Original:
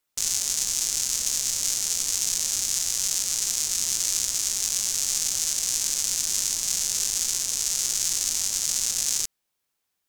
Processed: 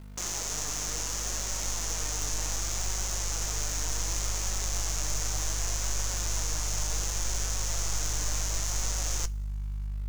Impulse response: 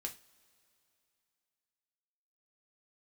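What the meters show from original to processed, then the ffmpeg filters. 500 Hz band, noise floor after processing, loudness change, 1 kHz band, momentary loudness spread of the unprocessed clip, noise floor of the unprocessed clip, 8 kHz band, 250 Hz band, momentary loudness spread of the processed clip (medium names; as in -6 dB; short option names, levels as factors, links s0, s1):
+6.5 dB, -33 dBFS, -7.5 dB, +6.5 dB, 1 LU, -79 dBFS, -8.5 dB, +4.5 dB, 1 LU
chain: -filter_complex "[0:a]asplit=2[s0][s1];[s1]highpass=f=720:p=1,volume=11.2,asoftclip=type=tanh:threshold=0.562[s2];[s0][s2]amix=inputs=2:normalize=0,lowpass=f=1500:p=1,volume=0.501,asplit=2[s3][s4];[1:a]atrim=start_sample=2205,asetrate=48510,aresample=44100[s5];[s4][s5]afir=irnorm=-1:irlink=0,volume=0.355[s6];[s3][s6]amix=inputs=2:normalize=0,aeval=exprs='val(0)+0.0112*(sin(2*PI*50*n/s)+sin(2*PI*2*50*n/s)/2+sin(2*PI*3*50*n/s)/3+sin(2*PI*4*50*n/s)/4+sin(2*PI*5*50*n/s)/5)':c=same,flanger=delay=5.3:depth=1.4:regen=66:speed=0.67:shape=sinusoidal,acrusher=bits=3:mode=log:mix=0:aa=0.000001,asubboost=boost=8:cutoff=75"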